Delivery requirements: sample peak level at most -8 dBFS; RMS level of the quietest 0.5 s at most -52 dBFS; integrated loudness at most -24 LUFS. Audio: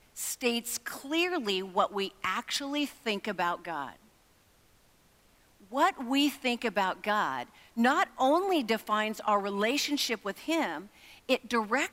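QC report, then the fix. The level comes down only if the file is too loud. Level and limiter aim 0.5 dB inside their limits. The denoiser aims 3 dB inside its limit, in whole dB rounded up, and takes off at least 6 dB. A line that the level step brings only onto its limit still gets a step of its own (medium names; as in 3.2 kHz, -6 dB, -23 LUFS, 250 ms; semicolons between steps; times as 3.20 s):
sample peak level -12.5 dBFS: pass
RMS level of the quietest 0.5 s -64 dBFS: pass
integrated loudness -30.0 LUFS: pass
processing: none needed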